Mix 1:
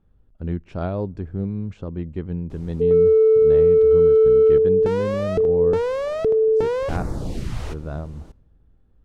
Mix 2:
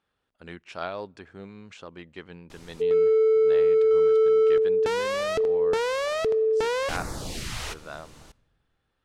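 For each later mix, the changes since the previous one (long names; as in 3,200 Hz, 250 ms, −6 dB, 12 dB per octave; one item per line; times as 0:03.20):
speech: add high-pass filter 510 Hz 6 dB per octave
master: add tilt shelving filter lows −9.5 dB, about 890 Hz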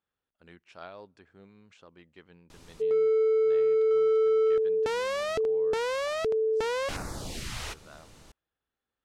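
speech −11.5 dB
background: send off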